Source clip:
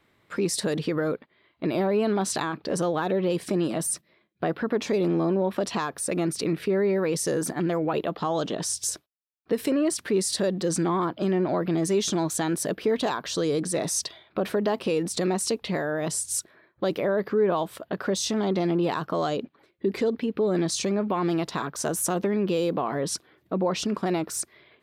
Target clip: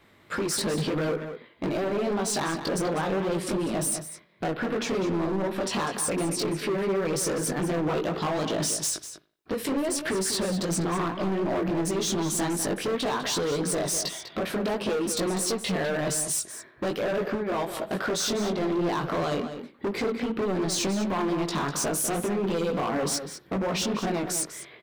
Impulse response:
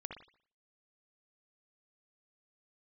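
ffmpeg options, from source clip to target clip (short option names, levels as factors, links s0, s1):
-filter_complex "[0:a]acompressor=threshold=0.0355:ratio=4,flanger=delay=17.5:depth=3.8:speed=2.7,asoftclip=type=hard:threshold=0.0178,asplit=2[s0][s1];[s1]adelay=198.3,volume=0.355,highshelf=f=4000:g=-4.46[s2];[s0][s2]amix=inputs=2:normalize=0,asplit=2[s3][s4];[1:a]atrim=start_sample=2205[s5];[s4][s5]afir=irnorm=-1:irlink=0,volume=0.422[s6];[s3][s6]amix=inputs=2:normalize=0,volume=2.66"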